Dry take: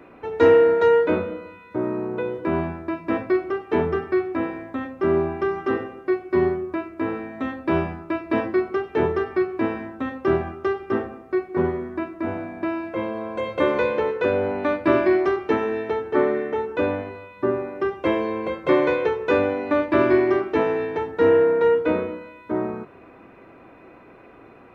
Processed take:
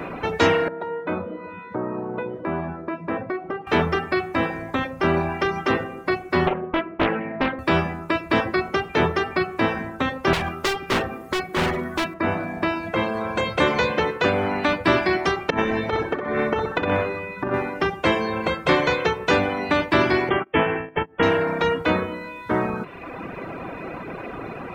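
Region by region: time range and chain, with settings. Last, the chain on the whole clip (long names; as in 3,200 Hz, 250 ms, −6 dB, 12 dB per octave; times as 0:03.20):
0:00.68–0:03.67: resonant band-pass 440 Hz, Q 0.52 + downward compressor 1.5 to 1, threshold −44 dBFS
0:06.47–0:07.59: band-pass filter 290–2,600 Hz + spectral tilt −3.5 dB per octave + highs frequency-modulated by the lows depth 0.45 ms
0:10.33–0:12.14: high-shelf EQ 2,700 Hz +9 dB + hard clipping −24 dBFS
0:15.50–0:17.54: high-shelf EQ 2,300 Hz −7.5 dB + compressor whose output falls as the input rises −25 dBFS, ratio −0.5 + flutter between parallel walls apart 10.8 metres, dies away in 0.77 s
0:20.29–0:21.23: noise gate −25 dBFS, range −32 dB + upward compression, threshold −26 dBFS + linear-phase brick-wall low-pass 3,500 Hz
whole clip: reverb reduction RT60 0.88 s; parametric band 170 Hz +7 dB 0.41 octaves; every bin compressed towards the loudest bin 2 to 1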